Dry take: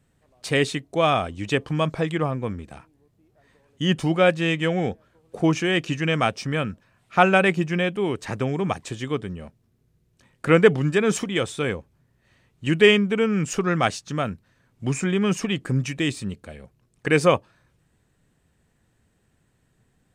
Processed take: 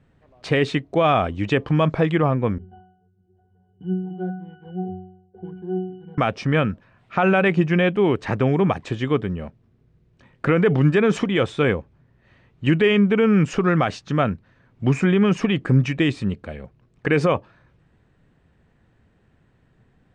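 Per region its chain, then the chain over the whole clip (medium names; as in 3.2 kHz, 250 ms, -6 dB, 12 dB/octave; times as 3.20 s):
2.58–6.18 s: median filter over 25 samples + pitch-class resonator F#, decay 0.63 s + three bands compressed up and down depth 40%
whole clip: peak limiter -14.5 dBFS; Bessel low-pass 2.5 kHz, order 2; trim +6.5 dB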